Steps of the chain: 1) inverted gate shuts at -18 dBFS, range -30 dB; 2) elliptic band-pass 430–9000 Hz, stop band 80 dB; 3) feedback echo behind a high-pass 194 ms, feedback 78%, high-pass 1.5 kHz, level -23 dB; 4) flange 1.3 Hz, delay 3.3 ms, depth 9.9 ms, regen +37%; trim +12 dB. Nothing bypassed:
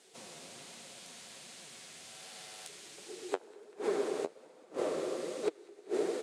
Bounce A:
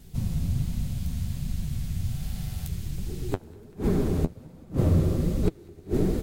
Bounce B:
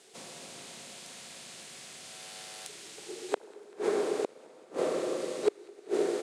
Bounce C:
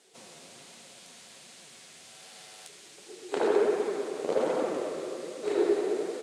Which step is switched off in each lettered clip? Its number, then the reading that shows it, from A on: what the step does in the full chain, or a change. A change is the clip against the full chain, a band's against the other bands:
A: 2, 125 Hz band +35.0 dB; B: 4, loudness change +4.0 LU; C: 1, momentary loudness spread change +8 LU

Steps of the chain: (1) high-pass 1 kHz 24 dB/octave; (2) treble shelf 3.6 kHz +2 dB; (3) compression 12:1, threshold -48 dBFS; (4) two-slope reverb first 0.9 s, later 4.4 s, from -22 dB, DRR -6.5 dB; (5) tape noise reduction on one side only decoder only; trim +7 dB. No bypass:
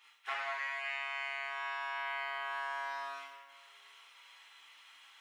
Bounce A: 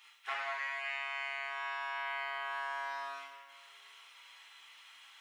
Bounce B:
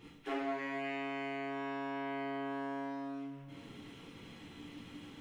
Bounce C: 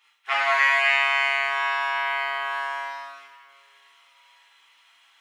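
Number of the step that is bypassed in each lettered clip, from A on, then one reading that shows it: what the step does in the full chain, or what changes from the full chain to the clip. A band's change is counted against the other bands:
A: 5, momentary loudness spread change -2 LU; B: 1, 500 Hz band +14.0 dB; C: 3, mean gain reduction 10.0 dB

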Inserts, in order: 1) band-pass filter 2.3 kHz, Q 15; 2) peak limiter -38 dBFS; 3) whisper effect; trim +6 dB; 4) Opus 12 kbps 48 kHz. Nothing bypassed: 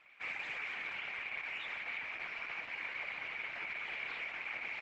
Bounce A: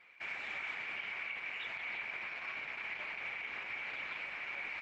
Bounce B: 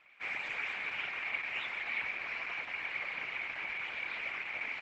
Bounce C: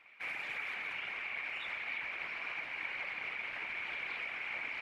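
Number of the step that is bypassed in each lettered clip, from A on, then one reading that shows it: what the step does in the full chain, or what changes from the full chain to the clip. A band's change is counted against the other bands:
3, crest factor change -2.5 dB; 2, mean gain reduction 3.0 dB; 4, crest factor change -1.5 dB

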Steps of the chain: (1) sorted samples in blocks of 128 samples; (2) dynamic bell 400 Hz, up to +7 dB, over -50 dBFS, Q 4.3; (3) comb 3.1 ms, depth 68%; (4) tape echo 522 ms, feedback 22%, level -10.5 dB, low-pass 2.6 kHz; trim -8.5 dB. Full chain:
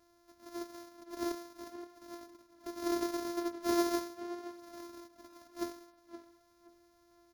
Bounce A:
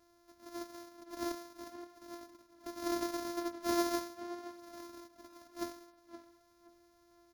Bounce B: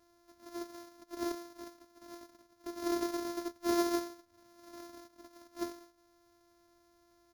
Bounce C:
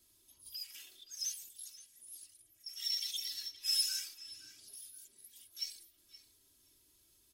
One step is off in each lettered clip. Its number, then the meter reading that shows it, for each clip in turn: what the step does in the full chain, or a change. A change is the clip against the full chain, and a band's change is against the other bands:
2, 250 Hz band -2.5 dB; 4, echo-to-direct -17.5 dB to none; 1, crest factor change +3.5 dB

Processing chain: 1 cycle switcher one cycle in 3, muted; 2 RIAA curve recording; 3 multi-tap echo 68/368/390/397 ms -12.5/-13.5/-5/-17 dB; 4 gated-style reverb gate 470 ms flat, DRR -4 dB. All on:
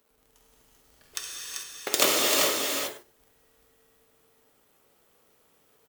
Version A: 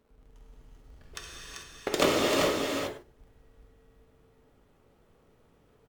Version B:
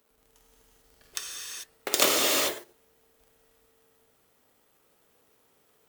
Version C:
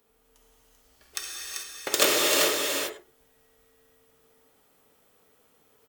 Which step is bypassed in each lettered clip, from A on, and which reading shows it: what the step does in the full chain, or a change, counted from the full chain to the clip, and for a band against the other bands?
2, 125 Hz band +12.5 dB; 3, echo-to-direct 6.0 dB to 4.0 dB; 1, 2 kHz band +1.5 dB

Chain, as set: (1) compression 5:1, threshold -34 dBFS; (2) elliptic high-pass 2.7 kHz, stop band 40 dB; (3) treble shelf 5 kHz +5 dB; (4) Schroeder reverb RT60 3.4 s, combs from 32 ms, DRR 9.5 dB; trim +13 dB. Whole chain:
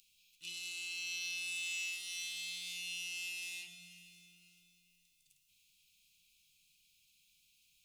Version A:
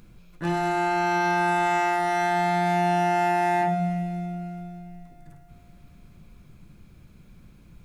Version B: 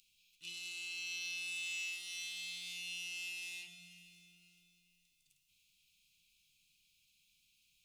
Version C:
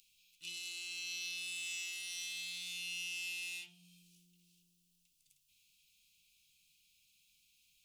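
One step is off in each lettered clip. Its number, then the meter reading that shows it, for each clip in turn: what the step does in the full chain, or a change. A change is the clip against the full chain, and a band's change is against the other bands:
2, crest factor change -2.0 dB; 3, 8 kHz band -2.5 dB; 4, momentary loudness spread change -8 LU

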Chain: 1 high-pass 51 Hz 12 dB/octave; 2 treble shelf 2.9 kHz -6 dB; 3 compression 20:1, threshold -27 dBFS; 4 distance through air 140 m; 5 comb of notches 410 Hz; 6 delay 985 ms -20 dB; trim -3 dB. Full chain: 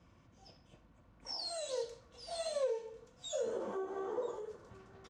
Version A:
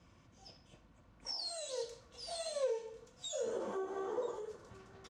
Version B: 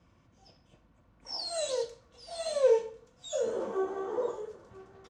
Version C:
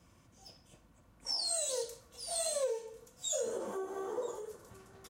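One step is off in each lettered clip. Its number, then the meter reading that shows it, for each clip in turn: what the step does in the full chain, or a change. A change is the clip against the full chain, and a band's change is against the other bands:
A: 2, 8 kHz band +2.0 dB; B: 3, mean gain reduction 4.5 dB; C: 4, 8 kHz band +13.0 dB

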